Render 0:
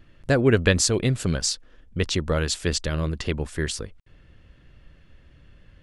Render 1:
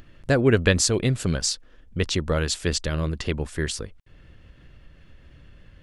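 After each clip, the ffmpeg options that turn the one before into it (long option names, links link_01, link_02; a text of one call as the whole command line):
ffmpeg -i in.wav -af "acompressor=mode=upward:threshold=-42dB:ratio=2.5" out.wav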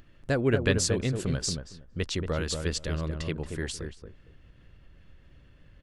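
ffmpeg -i in.wav -filter_complex "[0:a]asplit=2[link_01][link_02];[link_02]adelay=230,lowpass=frequency=960:poles=1,volume=-4.5dB,asplit=2[link_03][link_04];[link_04]adelay=230,lowpass=frequency=960:poles=1,volume=0.18,asplit=2[link_05][link_06];[link_06]adelay=230,lowpass=frequency=960:poles=1,volume=0.18[link_07];[link_01][link_03][link_05][link_07]amix=inputs=4:normalize=0,volume=-6.5dB" out.wav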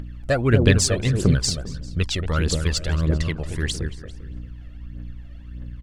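ffmpeg -i in.wav -filter_complex "[0:a]aeval=exprs='val(0)+0.00501*(sin(2*PI*60*n/s)+sin(2*PI*2*60*n/s)/2+sin(2*PI*3*60*n/s)/3+sin(2*PI*4*60*n/s)/4+sin(2*PI*5*60*n/s)/5)':channel_layout=same,aphaser=in_gain=1:out_gain=1:delay=1.7:decay=0.64:speed=1.6:type=triangular,asplit=2[link_01][link_02];[link_02]adelay=396.5,volume=-18dB,highshelf=frequency=4000:gain=-8.92[link_03];[link_01][link_03]amix=inputs=2:normalize=0,volume=4.5dB" out.wav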